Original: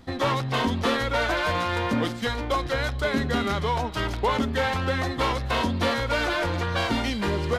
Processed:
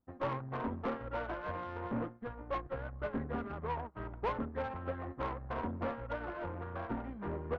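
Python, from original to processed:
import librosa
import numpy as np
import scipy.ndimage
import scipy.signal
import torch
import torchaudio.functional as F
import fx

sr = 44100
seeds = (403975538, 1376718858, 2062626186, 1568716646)

y = scipy.signal.sosfilt(scipy.signal.butter(4, 1400.0, 'lowpass', fs=sr, output='sos'), x)
y = fx.tube_stage(y, sr, drive_db=23.0, bias=0.55)
y = fx.upward_expand(y, sr, threshold_db=-43.0, expansion=2.5)
y = F.gain(torch.from_numpy(y), -4.5).numpy()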